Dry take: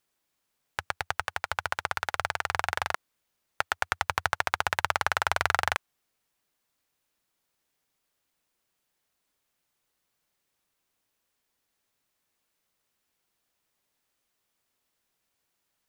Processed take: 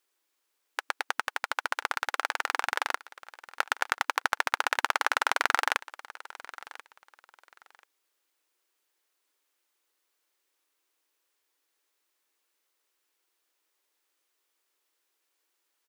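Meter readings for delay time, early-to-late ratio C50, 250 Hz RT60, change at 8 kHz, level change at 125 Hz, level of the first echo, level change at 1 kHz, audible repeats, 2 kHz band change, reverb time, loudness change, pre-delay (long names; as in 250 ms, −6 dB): 1,036 ms, no reverb audible, no reverb audible, +1.0 dB, below −40 dB, −18.5 dB, 0.0 dB, 2, +1.0 dB, no reverb audible, +0.5 dB, no reverb audible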